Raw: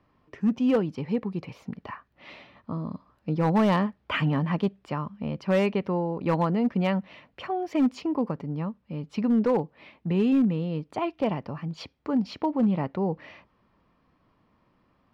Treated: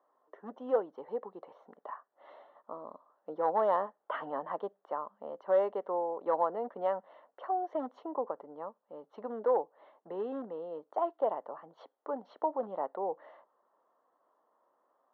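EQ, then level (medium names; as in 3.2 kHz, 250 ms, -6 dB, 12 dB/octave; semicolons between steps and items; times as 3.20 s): boxcar filter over 18 samples; high-pass 570 Hz 24 dB/octave; tilt EQ -3.5 dB/octave; 0.0 dB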